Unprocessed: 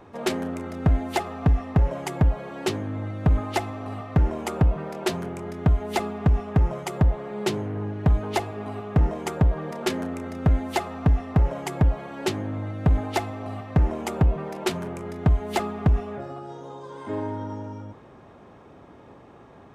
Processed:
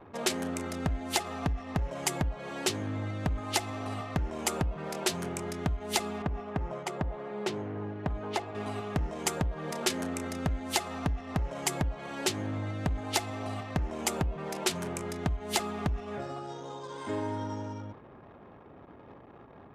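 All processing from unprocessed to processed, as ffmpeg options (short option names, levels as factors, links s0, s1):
-filter_complex "[0:a]asettb=1/sr,asplit=3[s0][s1][s2];[s0]atrim=end=6.224[s3];[s1]atrim=start=6.22:end=8.55,asetpts=PTS-STARTPTS,afade=t=in:d=0.004:c=qsin,afade=t=out:st=2.326:d=0.004:c=qsin,lowpass=f=1300:p=1,lowshelf=f=200:g=-8[s4];[s2]atrim=start=8.546[s5];[s3][s4]acrossfade=d=0.004:c1=hsin:c2=qsin[s6];[s6][s5]acrossfade=d=0.004:c1=qsin:c2=hsin,acompressor=threshold=0.0501:ratio=4,anlmdn=0.00631,equalizer=f=8400:w=0.3:g=14,volume=0.708"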